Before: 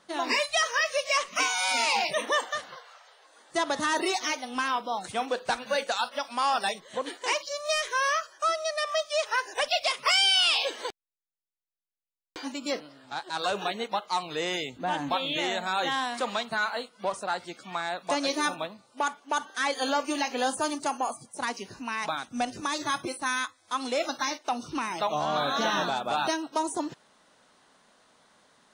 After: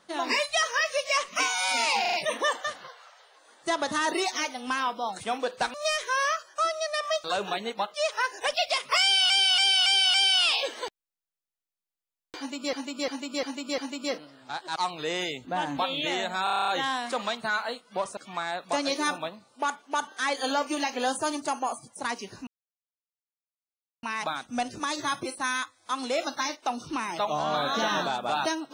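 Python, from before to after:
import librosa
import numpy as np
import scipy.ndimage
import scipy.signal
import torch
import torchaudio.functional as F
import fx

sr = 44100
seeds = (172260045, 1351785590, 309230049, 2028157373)

y = fx.edit(x, sr, fx.stutter(start_s=2.01, slice_s=0.04, count=4),
    fx.cut(start_s=5.62, length_s=1.96),
    fx.repeat(start_s=10.16, length_s=0.28, count=5),
    fx.repeat(start_s=12.4, length_s=0.35, count=5),
    fx.move(start_s=13.38, length_s=0.7, to_s=9.08),
    fx.stutter(start_s=15.76, slice_s=0.03, count=9),
    fx.cut(start_s=17.25, length_s=0.3),
    fx.insert_silence(at_s=21.85, length_s=1.56), tone=tone)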